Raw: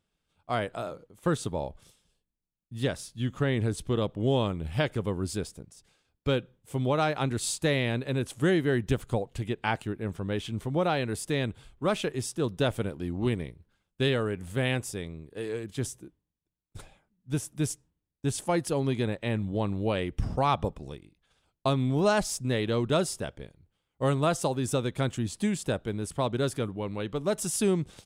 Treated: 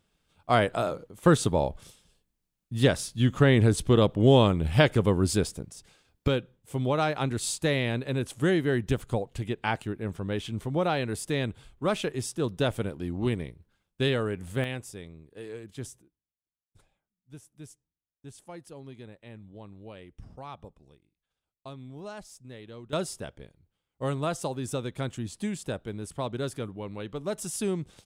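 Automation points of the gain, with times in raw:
+7 dB
from 6.28 s 0 dB
from 14.64 s -6.5 dB
from 16.02 s -17 dB
from 22.93 s -4 dB

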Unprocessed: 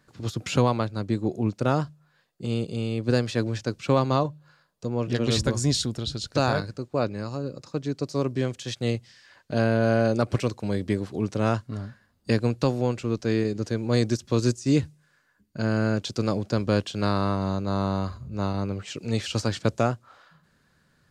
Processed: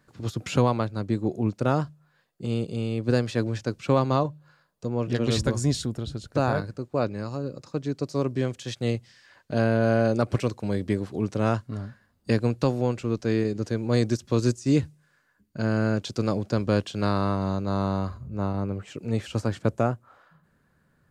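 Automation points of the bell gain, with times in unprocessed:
bell 4700 Hz 1.9 oct
5.51 s -3.5 dB
6.23 s -14 dB
7 s -3 dB
17.9 s -3 dB
18.41 s -12 dB

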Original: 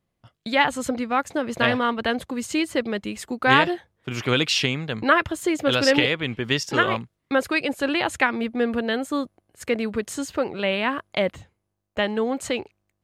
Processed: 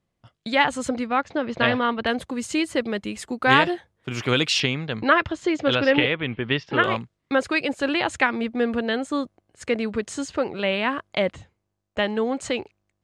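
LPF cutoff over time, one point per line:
LPF 24 dB/oct
9600 Hz
from 1.07 s 4900 Hz
from 2.07 s 11000 Hz
from 4.6 s 5800 Hz
from 5.75 s 3400 Hz
from 6.84 s 8400 Hz

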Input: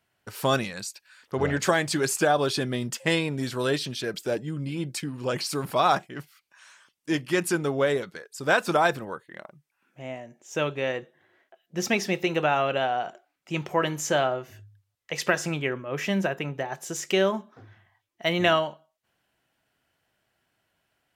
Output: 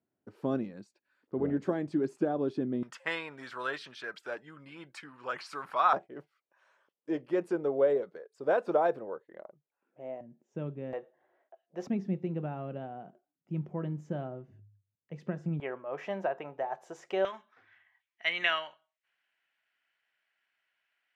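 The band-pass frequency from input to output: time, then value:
band-pass, Q 1.9
280 Hz
from 2.83 s 1300 Hz
from 5.93 s 500 Hz
from 10.21 s 190 Hz
from 10.93 s 660 Hz
from 11.87 s 180 Hz
from 15.6 s 750 Hz
from 17.25 s 2100 Hz

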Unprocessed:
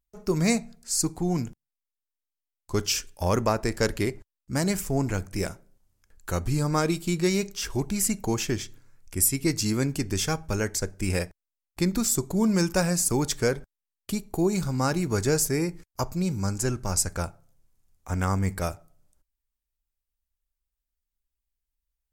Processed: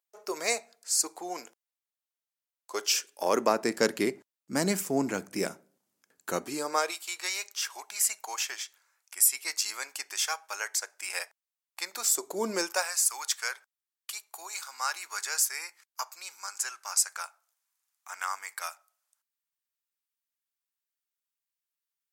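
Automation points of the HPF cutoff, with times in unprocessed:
HPF 24 dB/oct
2.78 s 480 Hz
3.71 s 200 Hz
6.31 s 200 Hz
7.02 s 800 Hz
11.8 s 800 Hz
12.5 s 310 Hz
12.93 s 1000 Hz

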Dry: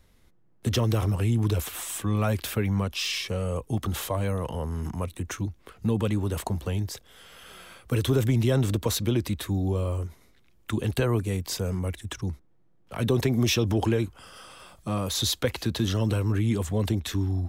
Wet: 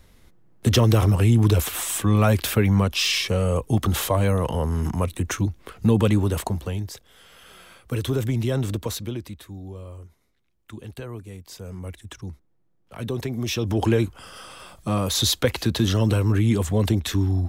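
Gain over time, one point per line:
6.16 s +7 dB
6.85 s -1 dB
8.79 s -1 dB
9.49 s -11 dB
11.48 s -11 dB
11.89 s -4.5 dB
13.42 s -4.5 dB
13.94 s +5 dB

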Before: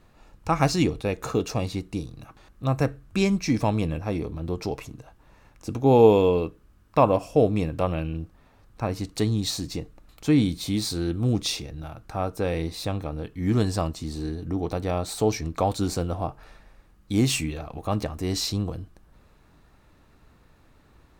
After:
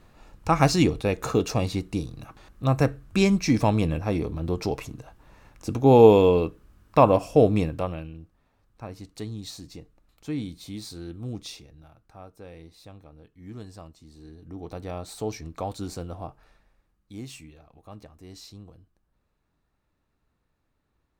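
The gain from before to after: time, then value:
7.58 s +2 dB
8.16 s -11 dB
11.36 s -11 dB
12.3 s -18 dB
14.1 s -18 dB
14.78 s -8 dB
16.26 s -8 dB
17.3 s -18 dB

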